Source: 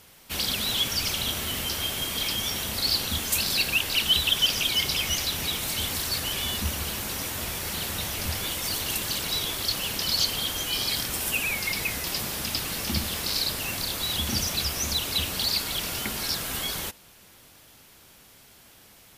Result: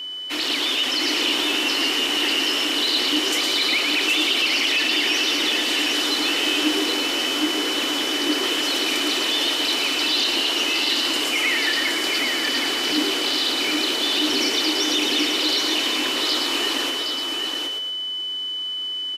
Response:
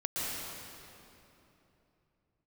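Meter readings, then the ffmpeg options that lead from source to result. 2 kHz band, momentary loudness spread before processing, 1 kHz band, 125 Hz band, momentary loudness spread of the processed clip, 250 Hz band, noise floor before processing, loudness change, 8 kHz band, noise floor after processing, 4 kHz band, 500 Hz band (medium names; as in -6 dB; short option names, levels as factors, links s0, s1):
+9.0 dB, 6 LU, +8.0 dB, under -15 dB, 5 LU, +12.0 dB, -53 dBFS, +6.0 dB, +1.0 dB, -28 dBFS, +8.0 dB, +10.5 dB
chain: -filter_complex "[0:a]afreqshift=-380,acrossover=split=260 6800:gain=0.112 1 0.126[s0][s1][s2];[s0][s1][s2]amix=inputs=3:normalize=0,alimiter=limit=0.0794:level=0:latency=1:release=11,asplit=2[s3][s4];[s4]asplit=5[s5][s6][s7][s8][s9];[s5]adelay=112,afreqshift=89,volume=0.596[s10];[s6]adelay=224,afreqshift=178,volume=0.232[s11];[s7]adelay=336,afreqshift=267,volume=0.0902[s12];[s8]adelay=448,afreqshift=356,volume=0.0355[s13];[s9]adelay=560,afreqshift=445,volume=0.0138[s14];[s10][s11][s12][s13][s14]amix=inputs=5:normalize=0[s15];[s3][s15]amix=inputs=2:normalize=0,aeval=exprs='val(0)+0.0178*sin(2*PI*3000*n/s)':c=same,lowshelf=f=220:t=q:w=3:g=-6.5,asplit=2[s16][s17];[s17]aecho=0:1:769:0.596[s18];[s16][s18]amix=inputs=2:normalize=0,volume=2"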